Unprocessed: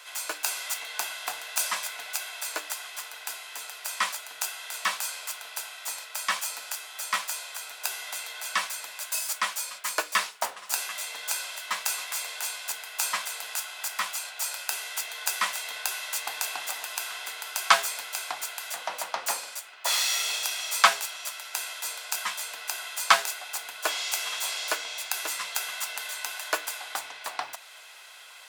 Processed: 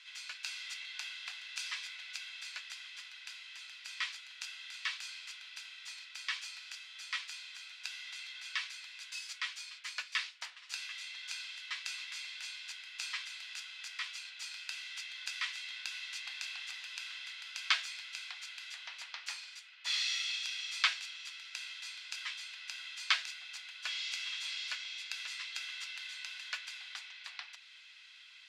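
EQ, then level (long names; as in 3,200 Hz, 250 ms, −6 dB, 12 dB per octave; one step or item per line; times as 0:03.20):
flat-topped band-pass 3,100 Hz, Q 1
−5.5 dB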